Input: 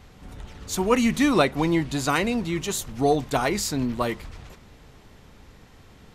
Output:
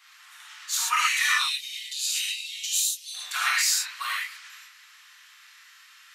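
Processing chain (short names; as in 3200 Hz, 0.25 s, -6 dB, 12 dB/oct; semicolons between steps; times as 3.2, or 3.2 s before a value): steep high-pass 1200 Hz 36 dB/oct, from 1.35 s 2900 Hz, from 3.13 s 1300 Hz; non-linear reverb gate 0.16 s flat, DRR -6.5 dB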